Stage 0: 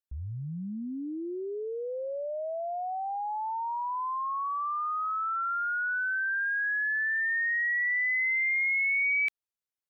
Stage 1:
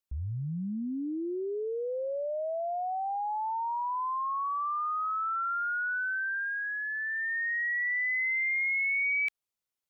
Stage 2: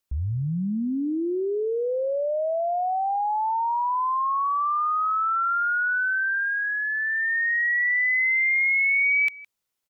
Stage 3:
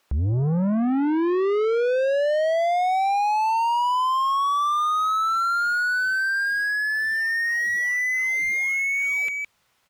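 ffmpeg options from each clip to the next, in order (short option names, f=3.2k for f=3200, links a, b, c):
-filter_complex "[0:a]asplit=2[a][b];[b]alimiter=level_in=10.5dB:limit=-24dB:level=0:latency=1:release=18,volume=-10.5dB,volume=3dB[c];[a][c]amix=inputs=2:normalize=0,equalizer=f=1.7k:w=7.1:g=-4.5,volume=-4.5dB"
-af "aecho=1:1:163:0.0891,volume=7.5dB"
-filter_complex "[0:a]asubboost=boost=6.5:cutoff=130,asplit=2[a][b];[b]highpass=f=720:p=1,volume=31dB,asoftclip=type=tanh:threshold=-17dB[c];[a][c]amix=inputs=2:normalize=0,lowpass=f=1.3k:p=1,volume=-6dB,volume=1.5dB"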